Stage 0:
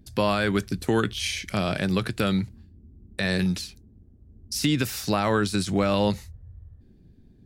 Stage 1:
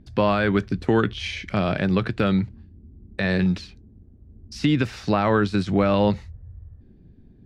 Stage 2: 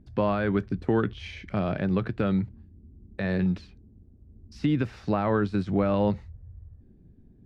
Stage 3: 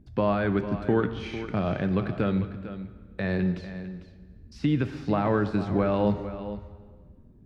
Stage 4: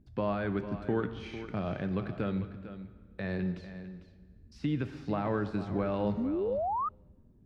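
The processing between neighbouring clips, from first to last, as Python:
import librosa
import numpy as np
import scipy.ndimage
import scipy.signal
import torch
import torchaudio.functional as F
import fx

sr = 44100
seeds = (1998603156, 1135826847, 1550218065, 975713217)

y1 = scipy.signal.sosfilt(scipy.signal.bessel(2, 2400.0, 'lowpass', norm='mag', fs=sr, output='sos'), x)
y1 = F.gain(torch.from_numpy(y1), 3.5).numpy()
y2 = fx.high_shelf(y1, sr, hz=2200.0, db=-11.5)
y2 = F.gain(torch.from_numpy(y2), -4.0).numpy()
y3 = y2 + 10.0 ** (-12.5 / 20.0) * np.pad(y2, (int(450 * sr / 1000.0), 0))[:len(y2)]
y3 = fx.rev_plate(y3, sr, seeds[0], rt60_s=1.7, hf_ratio=0.85, predelay_ms=0, drr_db=10.0)
y4 = fx.spec_paint(y3, sr, seeds[1], shape='rise', start_s=6.17, length_s=0.72, low_hz=210.0, high_hz=1300.0, level_db=-24.0)
y4 = F.gain(torch.from_numpy(y4), -7.0).numpy()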